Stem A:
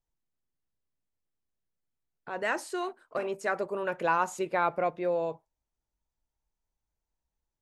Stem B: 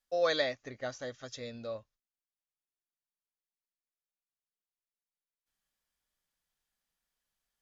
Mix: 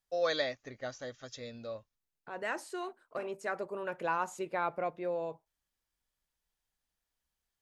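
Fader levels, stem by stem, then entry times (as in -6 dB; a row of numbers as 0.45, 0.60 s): -6.0, -2.0 dB; 0.00, 0.00 s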